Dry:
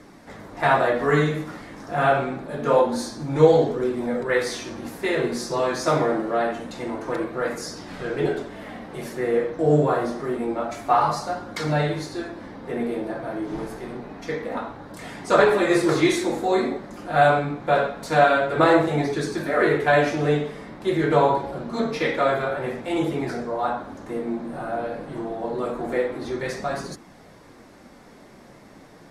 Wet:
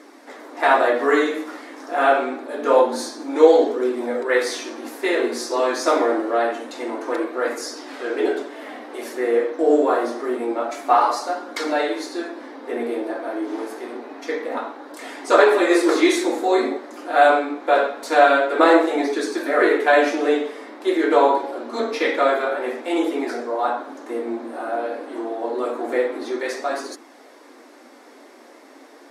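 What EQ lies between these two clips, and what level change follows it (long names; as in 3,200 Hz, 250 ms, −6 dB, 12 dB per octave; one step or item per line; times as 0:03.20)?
linear-phase brick-wall high-pass 240 Hz
+3.0 dB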